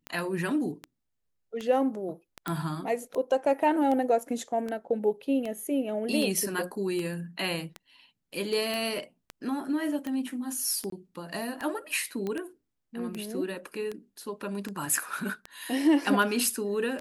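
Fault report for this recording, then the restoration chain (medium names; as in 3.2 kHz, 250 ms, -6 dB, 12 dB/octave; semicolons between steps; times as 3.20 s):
tick 78 rpm -21 dBFS
2.48 s: pop -17 dBFS
8.74 s: pop -19 dBFS
10.90–10.92 s: dropout 23 ms
12.27 s: pop -21 dBFS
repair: de-click; interpolate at 10.90 s, 23 ms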